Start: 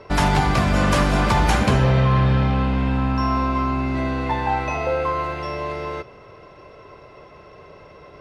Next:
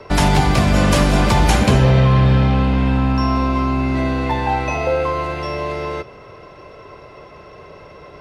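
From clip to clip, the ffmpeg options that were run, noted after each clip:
-filter_complex "[0:a]highshelf=f=8300:g=4,acrossover=split=370|960|1700[s0][s1][s2][s3];[s2]acompressor=threshold=0.01:ratio=6[s4];[s0][s1][s4][s3]amix=inputs=4:normalize=0,volume=1.68"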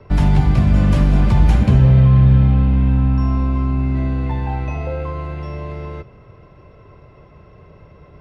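-af "bass=f=250:g=14,treble=f=4000:g=-8,volume=0.316"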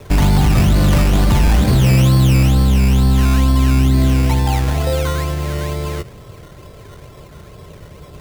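-af "acrusher=samples=14:mix=1:aa=0.000001:lfo=1:lforange=8.4:lforate=2.2,apsyclip=5.31,volume=0.398"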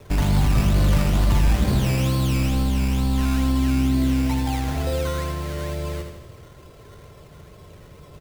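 -af "aecho=1:1:80|160|240|320|400|480|560:0.447|0.255|0.145|0.0827|0.0472|0.0269|0.0153,volume=0.398"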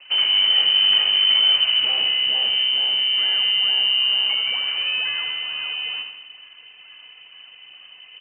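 -af "lowpass=f=2600:t=q:w=0.5098,lowpass=f=2600:t=q:w=0.6013,lowpass=f=2600:t=q:w=0.9,lowpass=f=2600:t=q:w=2.563,afreqshift=-3100"

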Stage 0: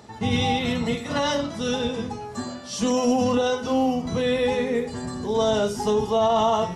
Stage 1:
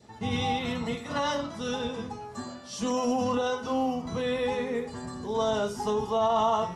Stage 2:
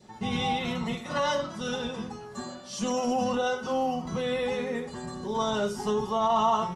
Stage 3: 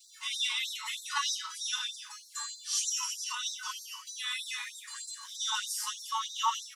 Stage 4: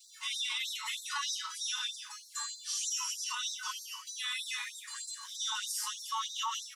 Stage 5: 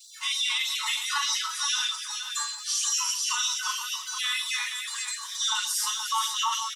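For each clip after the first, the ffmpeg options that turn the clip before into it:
-af "adynamicequalizer=threshold=0.0126:dfrequency=1100:dqfactor=1.5:tfrequency=1100:tqfactor=1.5:attack=5:release=100:ratio=0.375:range=3:mode=boostabove:tftype=bell,volume=0.447"
-af "aecho=1:1:5.4:0.54"
-af "aemphasis=mode=production:type=75kf,afftfilt=real='re*gte(b*sr/1024,840*pow(3700/840,0.5+0.5*sin(2*PI*3.2*pts/sr)))':imag='im*gte(b*sr/1024,840*pow(3700/840,0.5+0.5*sin(2*PI*3.2*pts/sr)))':win_size=1024:overlap=0.75,volume=0.891"
-af "alimiter=level_in=1.26:limit=0.0631:level=0:latency=1:release=42,volume=0.794"
-af "aecho=1:1:41|125|133|473:0.335|0.112|0.119|0.447,volume=2.37"

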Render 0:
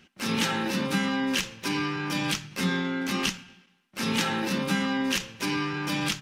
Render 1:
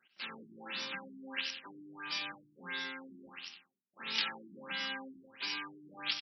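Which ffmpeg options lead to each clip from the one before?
-filter_complex "[0:a]aderivative,asplit=2[s0][s1];[s1]aecho=0:1:94|188|282|376|470:0.376|0.169|0.0761|0.0342|0.0154[s2];[s0][s2]amix=inputs=2:normalize=0,afftfilt=real='re*lt(b*sr/1024,370*pow(5900/370,0.5+0.5*sin(2*PI*1.5*pts/sr)))':imag='im*lt(b*sr/1024,370*pow(5900/370,0.5+0.5*sin(2*PI*1.5*pts/sr)))':win_size=1024:overlap=0.75,volume=1.5"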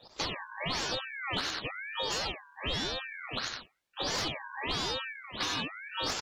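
-filter_complex "[0:a]asplit=2[s0][s1];[s1]highpass=f=720:p=1,volume=11.2,asoftclip=type=tanh:threshold=0.168[s2];[s0][s2]amix=inputs=2:normalize=0,lowpass=f=2300:p=1,volume=0.501,acompressor=threshold=0.0178:ratio=6,aeval=exprs='val(0)*sin(2*PI*1700*n/s+1700*0.25/1*sin(2*PI*1*n/s))':c=same,volume=2.24"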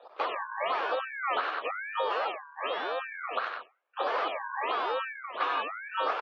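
-af "highpass=f=430:w=0.5412,highpass=f=430:w=1.3066,equalizer=f=490:t=q:w=4:g=3,equalizer=f=690:t=q:w=4:g=4,equalizer=f=1200:t=q:w=4:g=7,equalizer=f=2000:t=q:w=4:g=-6,lowpass=f=2400:w=0.5412,lowpass=f=2400:w=1.3066,volume=1.78"

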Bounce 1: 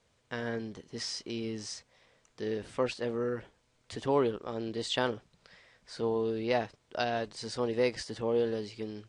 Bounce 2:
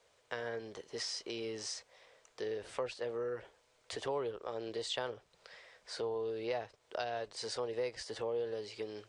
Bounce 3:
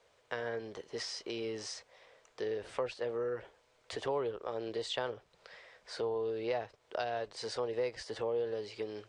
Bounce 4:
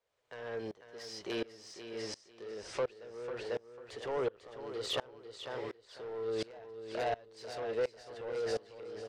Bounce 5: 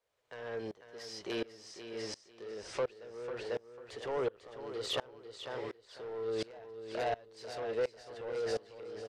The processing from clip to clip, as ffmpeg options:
-filter_complex "[0:a]lowshelf=f=330:t=q:w=1.5:g=-11,acrossover=split=150[s0][s1];[s1]acompressor=threshold=0.01:ratio=3[s2];[s0][s2]amix=inputs=2:normalize=0,volume=1.26"
-af "highshelf=f=5200:g=-8,volume=1.33"
-af "aecho=1:1:496|992|1488|1984|2480|2976|3472:0.631|0.328|0.171|0.0887|0.0461|0.024|0.0125,asoftclip=type=tanh:threshold=0.0266,aeval=exprs='val(0)*pow(10,-25*if(lt(mod(-1.4*n/s,1),2*abs(-1.4)/1000),1-mod(-1.4*n/s,1)/(2*abs(-1.4)/1000),(mod(-1.4*n/s,1)-2*abs(-1.4)/1000)/(1-2*abs(-1.4)/1000))/20)':c=same,volume=2.11"
-af "aresample=32000,aresample=44100"

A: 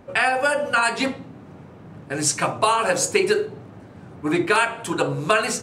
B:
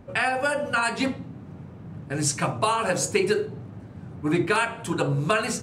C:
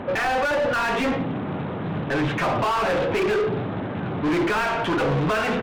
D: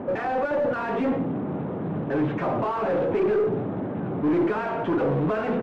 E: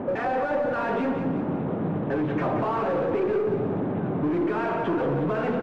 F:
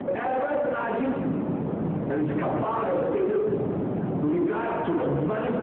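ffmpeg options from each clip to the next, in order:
-af "bass=f=250:g=9,treble=f=4000:g=0,volume=0.596"
-filter_complex "[0:a]aresample=8000,acrusher=bits=6:mode=log:mix=0:aa=0.000001,aresample=44100,asplit=2[s0][s1];[s1]highpass=f=720:p=1,volume=79.4,asoftclip=type=tanh:threshold=0.422[s2];[s0][s2]amix=inputs=2:normalize=0,lowpass=f=1400:p=1,volume=0.501,volume=0.473"
-filter_complex "[0:a]bandpass=f=320:t=q:w=0.63:csg=0,asplit=2[s0][s1];[s1]aeval=exprs='clip(val(0),-1,0.0422)':c=same,volume=0.299[s2];[s0][s2]amix=inputs=2:normalize=0,volume=0.891"
-af "acompressor=threshold=0.0562:ratio=6,aecho=1:1:181|362|543|724|905|1086:0.398|0.199|0.0995|0.0498|0.0249|0.0124,volume=1.26"
-ar 8000 -c:a libopencore_amrnb -b:a 7950

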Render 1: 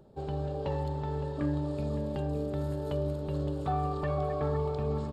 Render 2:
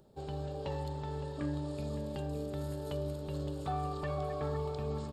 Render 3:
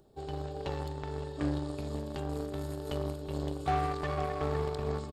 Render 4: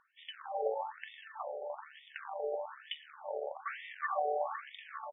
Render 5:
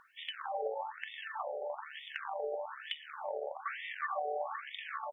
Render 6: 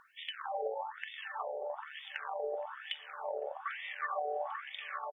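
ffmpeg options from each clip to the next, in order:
-af "highshelf=f=3000:g=11,volume=0.531"
-filter_complex "[0:a]aecho=1:1:2.7:0.35,asplit=2[s0][s1];[s1]acrusher=bits=4:mix=0:aa=0.5,volume=0.708[s2];[s0][s2]amix=inputs=2:normalize=0"
-af "acompressor=threshold=0.02:ratio=6,afftfilt=real='re*between(b*sr/1024,570*pow(2600/570,0.5+0.5*sin(2*PI*1.1*pts/sr))/1.41,570*pow(2600/570,0.5+0.5*sin(2*PI*1.1*pts/sr))*1.41)':imag='im*between(b*sr/1024,570*pow(2600/570,0.5+0.5*sin(2*PI*1.1*pts/sr))/1.41,570*pow(2600/570,0.5+0.5*sin(2*PI*1.1*pts/sr))*1.41)':win_size=1024:overlap=0.75,volume=3.35"
-af "acompressor=threshold=0.00316:ratio=2.5,volume=3.16"
-af "aecho=1:1:796|1592|2388:0.1|0.043|0.0185"

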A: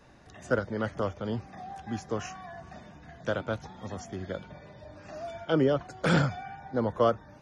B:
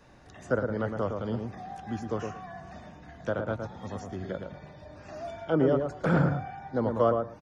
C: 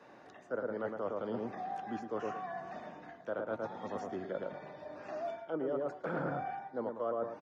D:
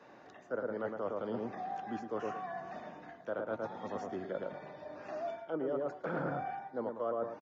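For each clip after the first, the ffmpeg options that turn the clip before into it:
-filter_complex "[0:a]acrossover=split=1700[s0][s1];[s1]acompressor=threshold=0.00251:ratio=6[s2];[s0][s2]amix=inputs=2:normalize=0,asplit=2[s3][s4];[s4]adelay=112,lowpass=f=1500:p=1,volume=0.596,asplit=2[s5][s6];[s6]adelay=112,lowpass=f=1500:p=1,volume=0.16,asplit=2[s7][s8];[s8]adelay=112,lowpass=f=1500:p=1,volume=0.16[s9];[s3][s5][s7][s9]amix=inputs=4:normalize=0"
-af "highpass=310,areverse,acompressor=threshold=0.0141:ratio=5,areverse,lowpass=f=1700:p=1,volume=1.5"
-af "aresample=16000,aresample=44100"

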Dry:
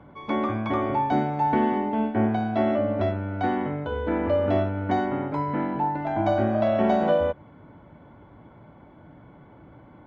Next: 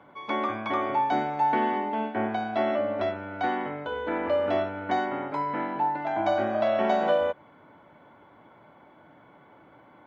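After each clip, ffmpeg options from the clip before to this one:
-af "highpass=f=760:p=1,volume=1.33"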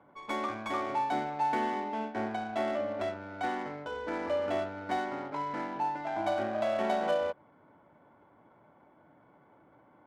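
-af "highshelf=f=3700:g=7.5,adynamicsmooth=sensitivity=6.5:basefreq=1600,volume=0.501"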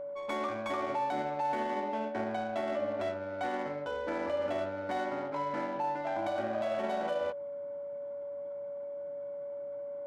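-af "alimiter=level_in=1.33:limit=0.0631:level=0:latency=1:release=21,volume=0.75,aeval=exprs='val(0)+0.0141*sin(2*PI*570*n/s)':c=same"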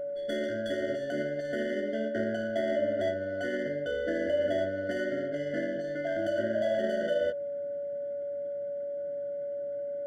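-af "afftfilt=real='re*eq(mod(floor(b*sr/1024/710),2),0)':imag='im*eq(mod(floor(b*sr/1024/710),2),0)':win_size=1024:overlap=0.75,volume=1.78"

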